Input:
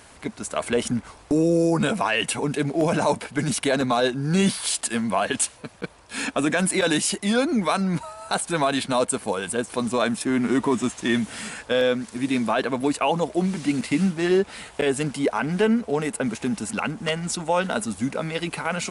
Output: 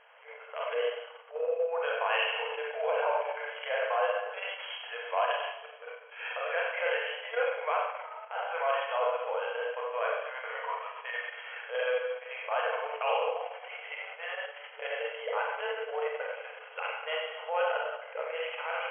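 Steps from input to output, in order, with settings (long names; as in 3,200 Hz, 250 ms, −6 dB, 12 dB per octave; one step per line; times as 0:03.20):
four-comb reverb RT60 1.1 s, combs from 31 ms, DRR −3 dB
transient designer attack −11 dB, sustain −7 dB
brick-wall band-pass 440–3,300 Hz
level −8 dB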